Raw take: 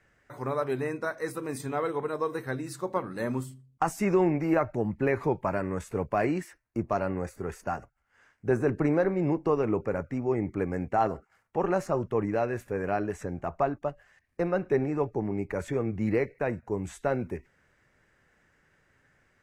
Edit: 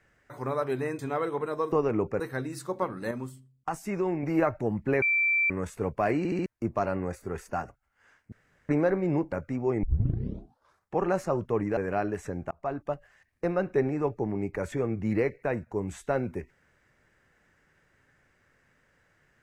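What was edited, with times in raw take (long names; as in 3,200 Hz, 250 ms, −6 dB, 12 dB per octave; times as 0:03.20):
0:00.99–0:01.61: remove
0:03.25–0:04.37: clip gain −5.5 dB
0:05.16–0:05.64: beep over 2,340 Hz −21.5 dBFS
0:06.32: stutter in place 0.07 s, 4 plays
0:08.46–0:08.83: fill with room tone
0:09.46–0:09.94: move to 0:02.34
0:10.45: tape start 1.16 s
0:12.39–0:12.73: remove
0:13.47–0:13.79: fade in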